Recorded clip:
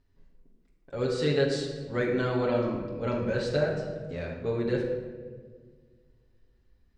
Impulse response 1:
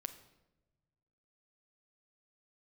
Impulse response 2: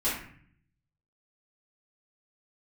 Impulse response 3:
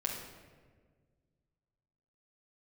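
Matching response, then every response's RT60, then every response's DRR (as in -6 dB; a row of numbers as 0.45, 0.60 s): 3; not exponential, 0.55 s, 1.6 s; 8.0, -12.0, -3.0 dB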